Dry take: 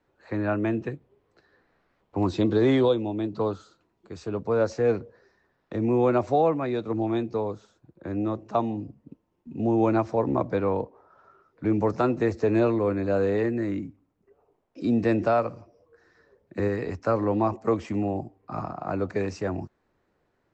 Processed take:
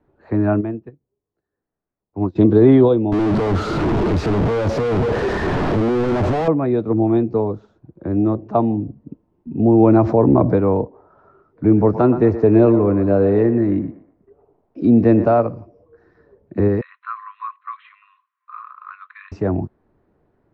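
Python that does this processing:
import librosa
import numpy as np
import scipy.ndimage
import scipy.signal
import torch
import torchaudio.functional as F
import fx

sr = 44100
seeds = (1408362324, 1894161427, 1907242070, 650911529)

y = fx.upward_expand(x, sr, threshold_db=-35.0, expansion=2.5, at=(0.6, 2.35), fade=0.02)
y = fx.clip_1bit(y, sr, at=(3.12, 6.48))
y = fx.env_flatten(y, sr, amount_pct=50, at=(9.82, 10.56))
y = fx.echo_banded(y, sr, ms=120, feedback_pct=45, hz=950.0, wet_db=-9.5, at=(11.7, 15.41), fade=0.02)
y = fx.brickwall_bandpass(y, sr, low_hz=1000.0, high_hz=4200.0, at=(16.81, 19.32))
y = scipy.signal.sosfilt(scipy.signal.butter(2, 4600.0, 'lowpass', fs=sr, output='sos'), y)
y = fx.tilt_shelf(y, sr, db=9.0, hz=1300.0)
y = fx.notch(y, sr, hz=520.0, q=12.0)
y = F.gain(torch.from_numpy(y), 2.5).numpy()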